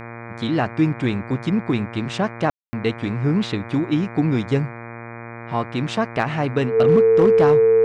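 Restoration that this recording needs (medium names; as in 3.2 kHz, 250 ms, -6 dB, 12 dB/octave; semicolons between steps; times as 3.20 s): clip repair -8 dBFS; de-hum 116.7 Hz, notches 21; band-stop 450 Hz, Q 30; room tone fill 2.50–2.73 s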